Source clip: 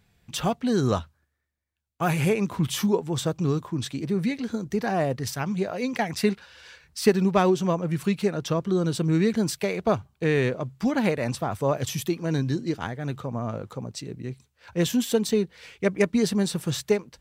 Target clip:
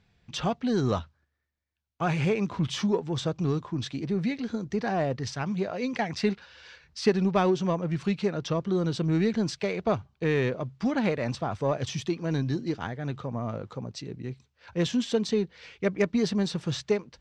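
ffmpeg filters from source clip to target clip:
-filter_complex "[0:a]lowpass=f=6000:w=0.5412,lowpass=f=6000:w=1.3066,asplit=2[s0][s1];[s1]asoftclip=type=tanh:threshold=0.0668,volume=0.398[s2];[s0][s2]amix=inputs=2:normalize=0,volume=0.596"

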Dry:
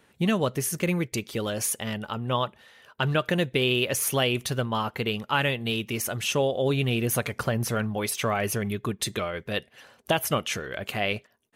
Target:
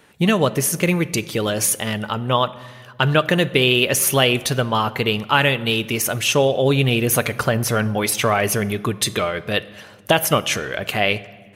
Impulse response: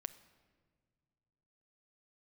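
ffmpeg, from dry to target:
-filter_complex "[0:a]asplit=2[s0][s1];[1:a]atrim=start_sample=2205,lowshelf=f=340:g=-3.5[s2];[s1][s2]afir=irnorm=-1:irlink=0,volume=4.47[s3];[s0][s3]amix=inputs=2:normalize=0,volume=0.668"

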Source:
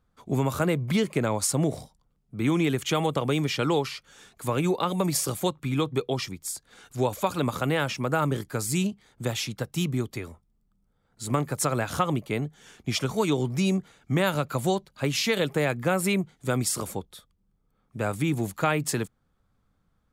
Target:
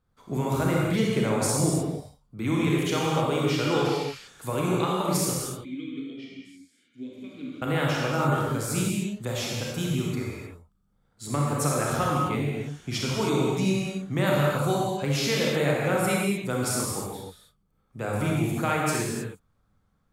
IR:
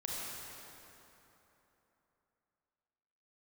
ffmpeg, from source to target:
-filter_complex "[0:a]asettb=1/sr,asplit=3[s0][s1][s2];[s0]atrim=end=5.334[s3];[s1]atrim=start=5.33:end=7.62,asetpts=PTS-STARTPTS,afade=t=in:d=0.004:c=qsin,afade=t=out:st=2.286:d=0.004:c=qsin,asplit=3[s4][s5][s6];[s4]bandpass=f=270:t=q:w=8,volume=1[s7];[s5]bandpass=f=2290:t=q:w=8,volume=0.501[s8];[s6]bandpass=f=3010:t=q:w=8,volume=0.355[s9];[s7][s8][s9]amix=inputs=3:normalize=0[s10];[s2]atrim=start=7.616[s11];[s3][s10]acrossfade=d=0.004:c1=hsin:c2=qsin[s12];[s12][s11]acrossfade=d=0.004:c1=qsin:c2=hsin[s13];[1:a]atrim=start_sample=2205,afade=t=out:st=0.4:d=0.01,atrim=end_sample=18081,asetrate=48510,aresample=44100[s14];[s13][s14]afir=irnorm=-1:irlink=0"

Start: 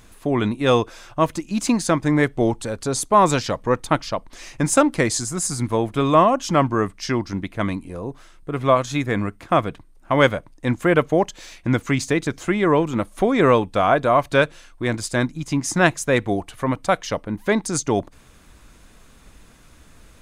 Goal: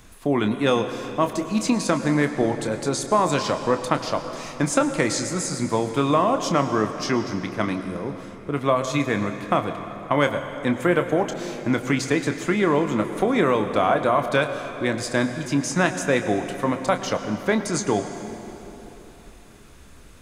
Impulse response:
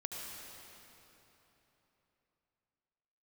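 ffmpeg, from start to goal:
-filter_complex "[0:a]acrossover=split=140|6900[s0][s1][s2];[s0]acompressor=threshold=0.00794:ratio=4[s3];[s1]acompressor=threshold=0.158:ratio=4[s4];[s2]acompressor=threshold=0.01:ratio=4[s5];[s3][s4][s5]amix=inputs=3:normalize=0,asplit=2[s6][s7];[1:a]atrim=start_sample=2205,adelay=28[s8];[s7][s8]afir=irnorm=-1:irlink=0,volume=0.473[s9];[s6][s9]amix=inputs=2:normalize=0"

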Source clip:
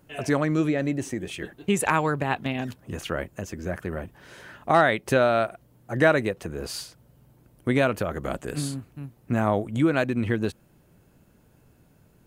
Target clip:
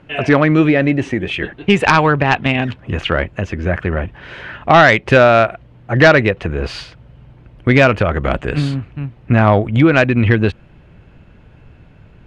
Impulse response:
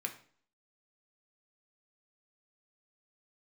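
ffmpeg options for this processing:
-af "lowpass=f=2700:t=q:w=1.7,asubboost=boost=2:cutoff=130,aeval=exprs='0.596*sin(PI/2*1.78*val(0)/0.596)':c=same,volume=1.41"

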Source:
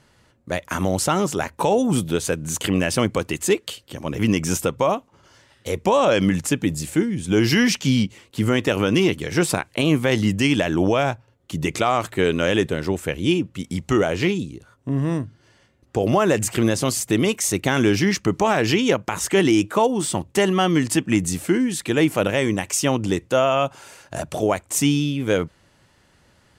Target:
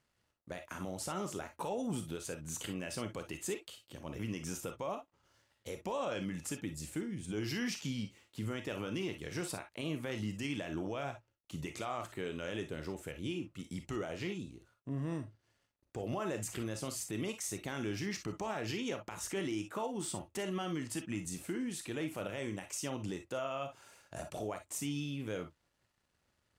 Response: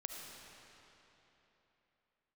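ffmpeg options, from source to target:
-filter_complex "[0:a]alimiter=limit=0.211:level=0:latency=1:release=151,aeval=exprs='sgn(val(0))*max(abs(val(0))-0.00112,0)':c=same[s0];[1:a]atrim=start_sample=2205,afade=t=out:st=0.18:d=0.01,atrim=end_sample=8379,asetrate=88200,aresample=44100[s1];[s0][s1]afir=irnorm=-1:irlink=0,volume=0.562"

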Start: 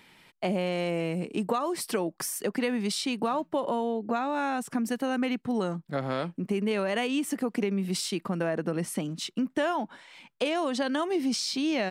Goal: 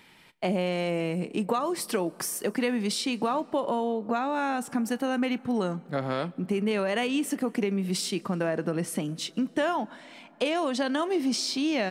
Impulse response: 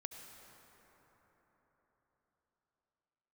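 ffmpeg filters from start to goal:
-filter_complex "[0:a]asplit=2[s0][s1];[1:a]atrim=start_sample=2205,adelay=33[s2];[s1][s2]afir=irnorm=-1:irlink=0,volume=0.178[s3];[s0][s3]amix=inputs=2:normalize=0,volume=1.12"

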